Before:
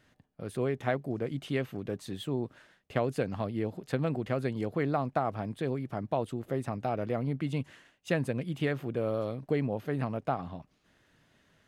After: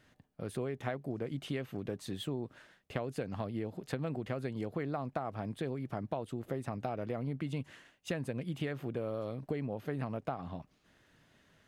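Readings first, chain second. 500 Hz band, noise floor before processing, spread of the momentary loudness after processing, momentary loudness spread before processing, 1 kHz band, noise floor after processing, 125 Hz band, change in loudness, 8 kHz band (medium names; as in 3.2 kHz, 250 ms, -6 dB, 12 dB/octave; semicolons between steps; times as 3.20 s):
-6.5 dB, -70 dBFS, 4 LU, 6 LU, -6.5 dB, -71 dBFS, -5.0 dB, -6.0 dB, -1.5 dB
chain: compression 5:1, threshold -33 dBFS, peak gain reduction 9.5 dB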